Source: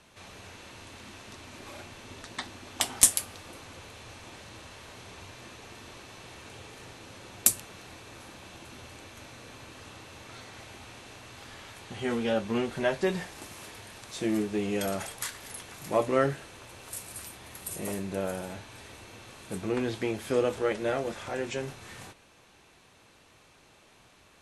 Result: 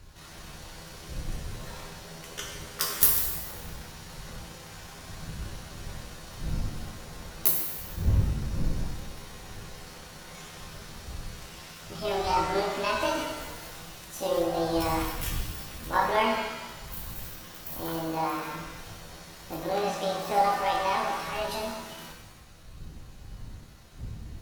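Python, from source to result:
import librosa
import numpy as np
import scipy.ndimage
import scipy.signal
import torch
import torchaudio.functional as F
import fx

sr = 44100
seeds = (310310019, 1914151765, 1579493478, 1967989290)

y = fx.pitch_heads(x, sr, semitones=8.5)
y = fx.dmg_wind(y, sr, seeds[0], corner_hz=83.0, level_db=-40.0)
y = fx.rev_shimmer(y, sr, seeds[1], rt60_s=1.1, semitones=7, shimmer_db=-8, drr_db=-0.5)
y = y * librosa.db_to_amplitude(-1.0)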